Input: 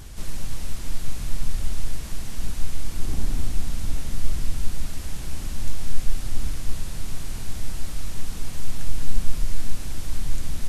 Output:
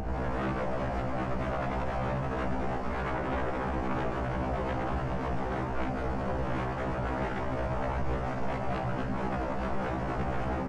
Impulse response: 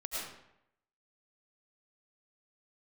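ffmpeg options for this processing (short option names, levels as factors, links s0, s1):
-filter_complex "[0:a]afftfilt=real='re':imag='-im':win_size=8192:overlap=0.75,superequalizer=6b=0.398:8b=3.98:9b=2.51:13b=0.282,acrossover=split=120|280|460[s0][s1][s2][s3];[s0]acompressor=threshold=0.0316:ratio=16[s4];[s4][s1][s2][s3]amix=inputs=4:normalize=0,alimiter=level_in=2:limit=0.0631:level=0:latency=1:release=37,volume=0.501,adynamicsmooth=sensitivity=0.5:basefreq=1100,flanger=delay=16:depth=5.8:speed=0.54,aeval=exprs='0.0282*sin(PI/2*7.94*val(0)/0.0282)':c=same,asplit=2[s5][s6];[s6]adelay=50,volume=0.251[s7];[s5][s7]amix=inputs=2:normalize=0,afftfilt=real='re*1.73*eq(mod(b,3),0)':imag='im*1.73*eq(mod(b,3),0)':win_size=2048:overlap=0.75,volume=1.78"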